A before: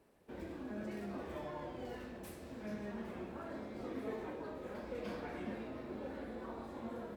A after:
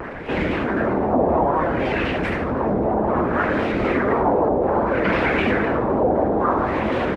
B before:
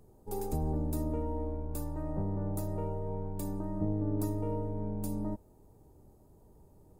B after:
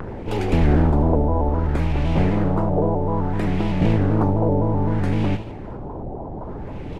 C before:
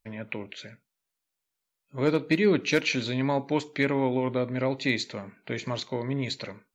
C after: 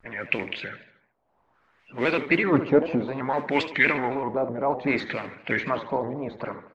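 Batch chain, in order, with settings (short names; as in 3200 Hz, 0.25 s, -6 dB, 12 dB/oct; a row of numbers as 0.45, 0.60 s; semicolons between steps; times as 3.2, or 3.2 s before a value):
harmonic-percussive split harmonic -16 dB; in parallel at -1 dB: upward compressor, threshold -36 dBFS; on the sum: transient shaper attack -3 dB, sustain +5 dB; modulation noise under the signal 16 dB; LFO low-pass sine 0.61 Hz 750–2600 Hz; on a send: feedback echo 76 ms, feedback 51%, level -13 dB; on the sum: shaped vibrato square 3.9 Hz, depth 100 cents; normalise peaks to -6 dBFS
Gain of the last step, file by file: +20.0, +17.0, +1.0 dB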